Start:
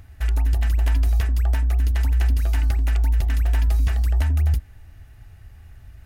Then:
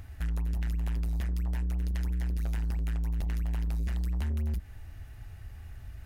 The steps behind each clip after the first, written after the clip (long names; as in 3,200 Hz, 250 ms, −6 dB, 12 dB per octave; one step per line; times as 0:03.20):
downward compressor 4 to 1, threshold −22 dBFS, peak gain reduction 6.5 dB
soft clipping −27.5 dBFS, distortion −13 dB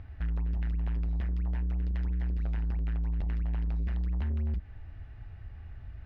high-frequency loss of the air 310 metres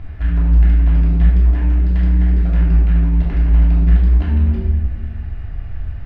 rectangular room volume 730 cubic metres, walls mixed, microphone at 3.1 metres
level +7.5 dB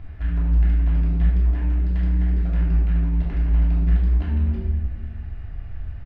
downsampling to 32,000 Hz
level −6.5 dB